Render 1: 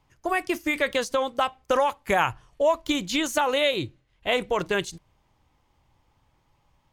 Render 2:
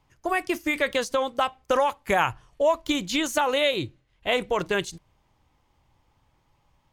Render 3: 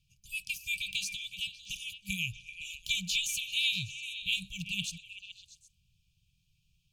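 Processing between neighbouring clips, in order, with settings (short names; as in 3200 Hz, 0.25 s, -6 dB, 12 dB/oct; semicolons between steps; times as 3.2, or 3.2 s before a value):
nothing audible
FFT band-reject 200–2300 Hz; low shelf 180 Hz -5.5 dB; delay with a stepping band-pass 0.128 s, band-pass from 760 Hz, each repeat 0.7 oct, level -3.5 dB; gain -1 dB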